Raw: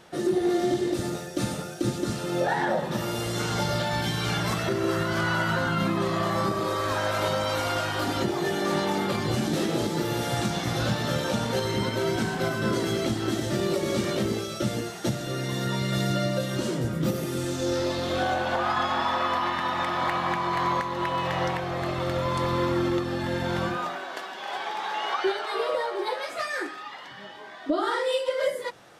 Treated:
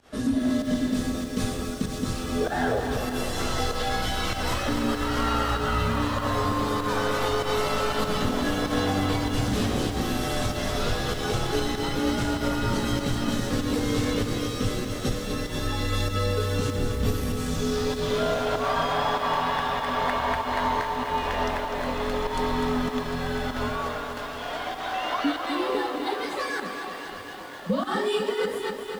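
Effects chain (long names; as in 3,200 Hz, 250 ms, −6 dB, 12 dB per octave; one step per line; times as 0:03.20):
fake sidechain pumping 97 BPM, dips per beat 1, −21 dB, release 108 ms
frequency shifter −100 Hz
feedback echo at a low word length 250 ms, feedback 80%, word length 8 bits, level −8 dB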